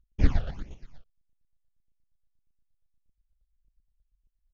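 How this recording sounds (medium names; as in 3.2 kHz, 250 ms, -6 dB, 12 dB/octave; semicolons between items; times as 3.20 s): chopped level 8.5 Hz, depth 60%, duty 30%; phasing stages 8, 1.7 Hz, lowest notch 270–1500 Hz; AC-3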